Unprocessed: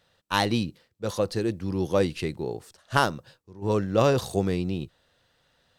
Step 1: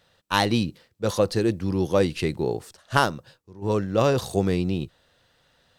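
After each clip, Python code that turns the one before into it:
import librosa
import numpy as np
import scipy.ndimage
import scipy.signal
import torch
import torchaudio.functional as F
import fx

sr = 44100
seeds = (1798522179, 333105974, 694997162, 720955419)

y = fx.rider(x, sr, range_db=3, speed_s=0.5)
y = F.gain(torch.from_numpy(y), 3.0).numpy()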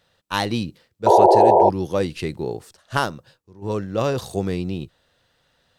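y = fx.spec_paint(x, sr, seeds[0], shape='noise', start_s=1.06, length_s=0.64, low_hz=340.0, high_hz=980.0, level_db=-11.0)
y = F.gain(torch.from_numpy(y), -1.5).numpy()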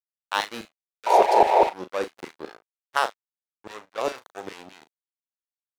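y = fx.backlash(x, sr, play_db=-19.0)
y = fx.filter_lfo_highpass(y, sr, shape='saw_down', hz=4.9, low_hz=360.0, high_hz=2100.0, q=0.78)
y = fx.doubler(y, sr, ms=38.0, db=-11.5)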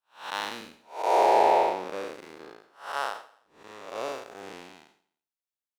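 y = fx.spec_blur(x, sr, span_ms=213.0)
y = fx.echo_feedback(y, sr, ms=85, feedback_pct=52, wet_db=-20)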